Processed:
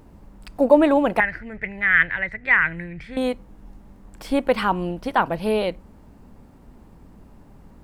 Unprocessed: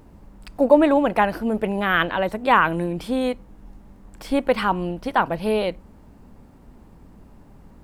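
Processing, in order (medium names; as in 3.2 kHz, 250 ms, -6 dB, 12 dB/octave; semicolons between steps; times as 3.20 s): 1.20–3.17 s: FFT filter 140 Hz 0 dB, 220 Hz -14 dB, 1.1 kHz -15 dB, 2 kHz +14 dB, 2.9 kHz -10 dB, 6.8 kHz -14 dB, 13 kHz -29 dB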